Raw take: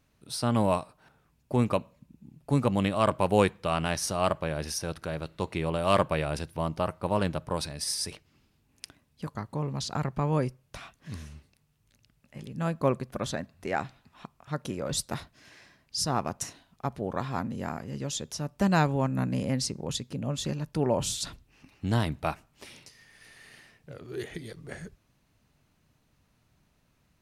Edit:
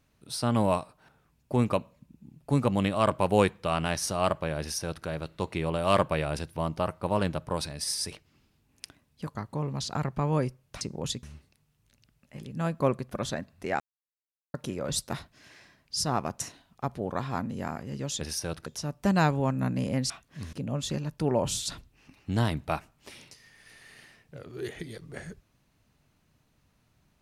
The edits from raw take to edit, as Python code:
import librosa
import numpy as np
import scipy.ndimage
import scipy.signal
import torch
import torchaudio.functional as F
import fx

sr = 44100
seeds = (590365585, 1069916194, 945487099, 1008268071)

y = fx.edit(x, sr, fx.duplicate(start_s=4.6, length_s=0.45, to_s=18.22),
    fx.swap(start_s=10.81, length_s=0.43, other_s=19.66, other_length_s=0.42),
    fx.silence(start_s=13.81, length_s=0.74), tone=tone)